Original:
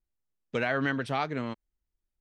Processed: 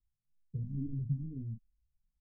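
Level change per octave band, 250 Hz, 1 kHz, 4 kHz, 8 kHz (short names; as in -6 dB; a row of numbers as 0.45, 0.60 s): -8.0 dB, under -40 dB, under -40 dB, under -25 dB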